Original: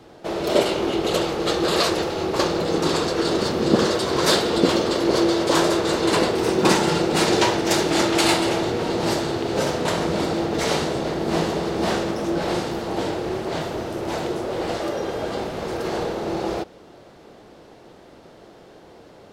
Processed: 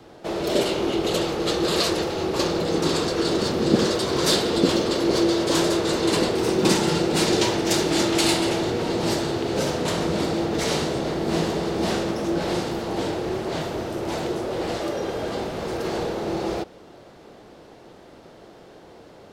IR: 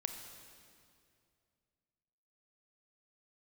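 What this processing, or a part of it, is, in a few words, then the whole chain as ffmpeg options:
one-band saturation: -filter_complex "[0:a]acrossover=split=470|2600[link_01][link_02][link_03];[link_02]asoftclip=type=tanh:threshold=-27dB[link_04];[link_01][link_04][link_03]amix=inputs=3:normalize=0"

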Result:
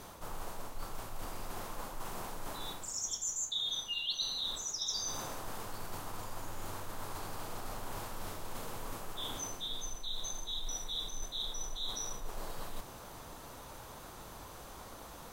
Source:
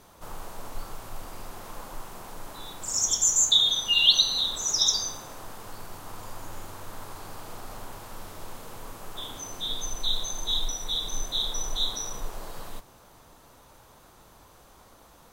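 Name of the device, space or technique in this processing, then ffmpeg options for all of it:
compression on the reversed sound: -af "areverse,acompressor=threshold=-42dB:ratio=5,areverse,volume=5dB"

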